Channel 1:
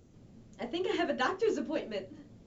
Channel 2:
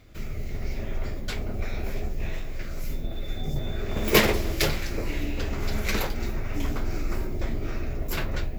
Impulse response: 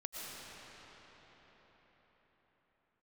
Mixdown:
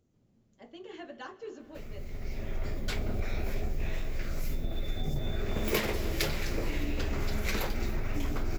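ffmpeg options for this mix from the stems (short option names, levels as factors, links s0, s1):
-filter_complex "[0:a]volume=0.2,asplit=3[s0][s1][s2];[s1]volume=0.188[s3];[1:a]adelay=1600,volume=0.944,asplit=2[s4][s5];[s5]volume=0.168[s6];[s2]apad=whole_len=449236[s7];[s4][s7]sidechaincompress=threshold=0.002:ratio=8:attack=16:release=1230[s8];[2:a]atrim=start_sample=2205[s9];[s3][s6]amix=inputs=2:normalize=0[s10];[s10][s9]afir=irnorm=-1:irlink=0[s11];[s0][s8][s11]amix=inputs=3:normalize=0,acompressor=threshold=0.0501:ratio=6"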